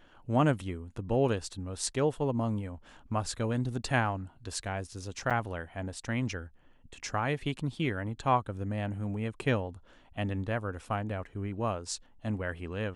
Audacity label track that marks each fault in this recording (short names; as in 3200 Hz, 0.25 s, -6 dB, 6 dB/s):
5.300000	5.310000	gap 6.8 ms